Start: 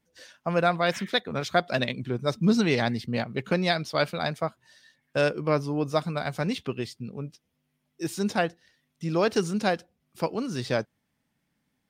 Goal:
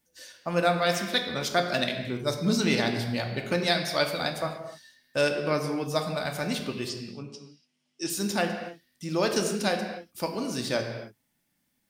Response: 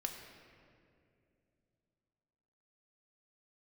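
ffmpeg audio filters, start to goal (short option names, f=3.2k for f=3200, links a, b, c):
-filter_complex "[0:a]asettb=1/sr,asplit=3[a][b][c];[a]atrim=end=6.894[d];[b]atrim=start=6.89:end=8.1,asetpts=PTS-STARTPTS,afade=t=in:d=0.004:c=qsin,afade=t=out:st=1.206:d=0.004:c=qsin,highpass=150,equalizer=f=550:t=q:w=4:g=-3,equalizer=f=2.9k:t=q:w=4:g=7,equalizer=f=5.1k:t=q:w=4:g=7,lowpass=f=8.1k:w=0.5412,lowpass=f=8.1k:w=1.3066[e];[c]atrim=start=8.096[f];[d][e]acrossfade=d=0.004:c1=hsin:c2=qsin[g];[g][f]acrossfade=d=0.004:c1=qsin:c2=hsin[h];[1:a]atrim=start_sample=2205,afade=t=out:st=0.35:d=0.01,atrim=end_sample=15876[i];[h][i]afir=irnorm=-1:irlink=0,crystalizer=i=2.5:c=0,volume=-1.5dB"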